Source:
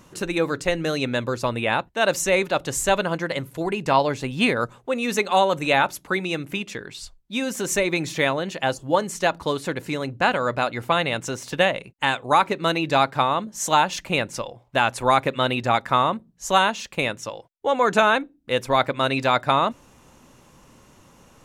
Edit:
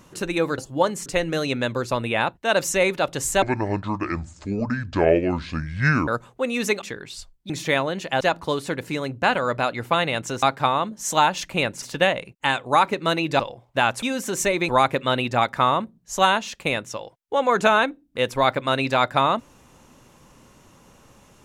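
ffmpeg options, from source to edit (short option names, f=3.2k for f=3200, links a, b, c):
-filter_complex "[0:a]asplit=13[a][b][c][d][e][f][g][h][i][j][k][l][m];[a]atrim=end=0.582[n];[b]atrim=start=8.708:end=9.192[o];[c]atrim=start=0.578:end=2.944[p];[d]atrim=start=2.94:end=4.56,asetpts=PTS-STARTPTS,asetrate=26901,aresample=44100,atrim=end_sample=117118,asetpts=PTS-STARTPTS[q];[e]atrim=start=4.556:end=5.302[r];[f]atrim=start=6.658:end=7.342[s];[g]atrim=start=7.998:end=8.712[t];[h]atrim=start=9.188:end=11.412[u];[i]atrim=start=12.978:end=14.382[v];[j]atrim=start=11.408:end=12.982[w];[k]atrim=start=14.378:end=15.012[x];[l]atrim=start=7.338:end=8.002[y];[m]atrim=start=15.008[z];[n][o]acrossfade=d=0.004:c1=hsin:c2=hsin[aa];[aa][p]acrossfade=d=0.004:c1=hsin:c2=hsin[ab];[ab][q]acrossfade=d=0.004:c1=hsin:c2=hsin[ac];[ac][r]acrossfade=d=0.004:c1=hsin:c2=hsin[ad];[ad][s]acrossfade=d=0.004:c1=hsin:c2=hsin[ae];[ae][t]acrossfade=d=0.004:c1=hsin:c2=hsin[af];[af][u]acrossfade=d=0.004:c1=hsin:c2=hsin[ag];[ag][v]acrossfade=d=0.004:c1=hsin:c2=hsin[ah];[ah][w]acrossfade=d=0.004:c1=hsin:c2=hsin[ai];[ai][x]acrossfade=d=0.004:c1=hsin:c2=hsin[aj];[aj][y]acrossfade=d=0.004:c1=hsin:c2=hsin[ak];[ak][z]acrossfade=d=0.004:c1=hsin:c2=hsin"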